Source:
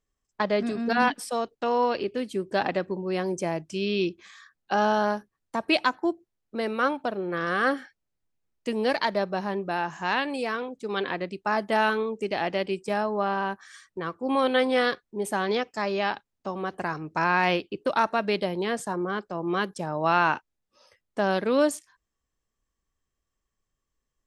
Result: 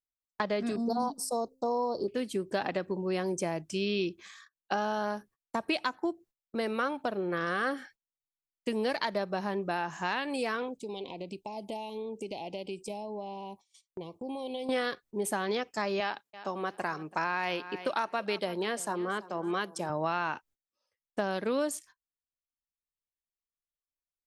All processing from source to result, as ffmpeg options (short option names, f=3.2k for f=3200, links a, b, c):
-filter_complex "[0:a]asettb=1/sr,asplit=3[a][b][c];[a]atrim=end=0.764[d];[b]atrim=start=0.76:end=2.08,asetpts=PTS-STARTPTS,afade=t=in:d=0.004:c=qsin,afade=t=out:st=1.316:d=0.004:c=qsin,asuperstop=centerf=2200:order=8:qfactor=0.63,bandreject=f=262.5:t=h:w=4,bandreject=f=525:t=h:w=4[e];[c]atrim=start=2.076[f];[d][e]acrossfade=d=0.004:c1=hsin:c2=qsin[g];[g][f]acrossfade=d=0.004:c1=qsin:c2=hsin,asettb=1/sr,asplit=3[h][i][j];[h]atrim=end=10.774[k];[i]atrim=start=10.77:end=14.69,asetpts=PTS-STARTPTS,afade=t=in:d=0.004:c=qsin,afade=t=out:st=3.916:d=0.004:c=qsin,acompressor=threshold=-34dB:ratio=4:attack=3.2:release=140:knee=1:detection=peak,asuperstop=centerf=1500:order=8:qfactor=1.1[l];[j]atrim=start=14.686[m];[k][l]acrossfade=d=0.004:c1=hsin:c2=qsin[n];[n][m]acrossfade=d=0.004:c1=qsin:c2=hsin,asettb=1/sr,asplit=3[o][p][q];[o]atrim=end=16.004[r];[p]atrim=start=16:end=19.9,asetpts=PTS-STARTPTS,afade=t=in:d=0.004:c=qsin,afade=t=out:st=3.896:d=0.004:c=qsin,highpass=93,lowshelf=f=210:g=-9,aecho=1:1:331|662:0.112|0.0258,atrim=end_sample=171990[s];[q]atrim=start=19.896[t];[r][s]acrossfade=d=0.004:c1=hsin:c2=qsin[u];[u][t]acrossfade=d=0.004:c1=qsin:c2=hsin,agate=range=-24dB:threshold=-49dB:ratio=16:detection=peak,highshelf=f=7.5k:g=7,acompressor=threshold=-26dB:ratio=5,volume=-1dB"